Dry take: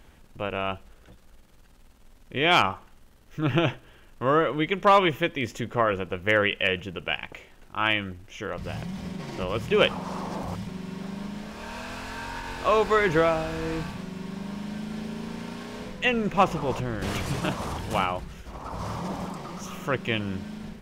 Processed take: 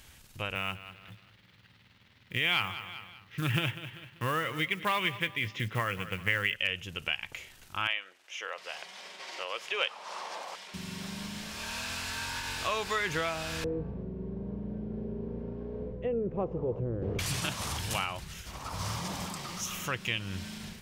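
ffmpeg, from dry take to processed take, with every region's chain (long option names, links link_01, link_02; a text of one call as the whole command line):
ffmpeg -i in.wav -filter_complex "[0:a]asettb=1/sr,asplit=3[link_01][link_02][link_03];[link_01]atrim=end=0.554[link_04];[link_02]atrim=start=0.55:end=6.56,asetpts=PTS-STARTPTS,afade=type=in:duration=0.004:curve=qsin,afade=type=out:start_time=6.006:duration=0.004:curve=qsin,highpass=110,equalizer=frequency=110:width_type=q:width=4:gain=9,equalizer=frequency=180:width_type=q:width=4:gain=6,equalizer=frequency=670:width_type=q:width=4:gain=-4,equalizer=frequency=2000:width_type=q:width=4:gain=5,lowpass=frequency=3900:width=0.5412,lowpass=frequency=3900:width=1.3066,acrusher=bits=8:mode=log:mix=0:aa=0.000001,aecho=1:1:194|388|582:0.141|0.0509|0.0183,atrim=end_sample=265041[link_05];[link_03]atrim=start=6.556[link_06];[link_04][link_05]acrossfade=duration=0.004:curve1=hsin:curve2=qsin[link_07];[link_07][link_06]acrossfade=duration=0.004:curve1=qsin:curve2=hsin,asettb=1/sr,asplit=3[link_08][link_09][link_10];[link_08]atrim=end=7.874[link_11];[link_09]atrim=start=7.87:end=10.74,asetpts=PTS-STARTPTS,afade=type=in:duration=0.004:curve=qsin,afade=type=out:start_time=2.866:duration=0.004:curve=qsin,highpass=frequency=510:width=0.5412,highpass=frequency=510:width=1.3066,aemphasis=mode=reproduction:type=bsi[link_12];[link_10]atrim=start=10.736[link_13];[link_11][link_12]acrossfade=duration=0.004:curve1=hsin:curve2=qsin[link_14];[link_14][link_13]acrossfade=duration=0.004:curve1=qsin:curve2=hsin,asettb=1/sr,asplit=3[link_15][link_16][link_17];[link_15]atrim=end=13.644[link_18];[link_16]atrim=start=13.64:end=17.19,asetpts=PTS-STARTPTS,afade=type=in:duration=0.004:curve=qsin,afade=type=out:start_time=3.546:duration=0.004:curve=qsin,lowpass=frequency=450:width_type=q:width=4.1,aeval=exprs='val(0)+0.0112*(sin(2*PI*60*n/s)+sin(2*PI*2*60*n/s)/2+sin(2*PI*3*60*n/s)/3+sin(2*PI*4*60*n/s)/4+sin(2*PI*5*60*n/s)/5)':channel_layout=same[link_19];[link_17]atrim=start=17.186[link_20];[link_18][link_19]acrossfade=duration=0.004:curve1=hsin:curve2=qsin[link_21];[link_21][link_20]acrossfade=duration=0.004:curve1=qsin:curve2=hsin,tiltshelf=frequency=1500:gain=-10,acompressor=threshold=-33dB:ratio=2,equalizer=frequency=97:width=0.97:gain=11" out.wav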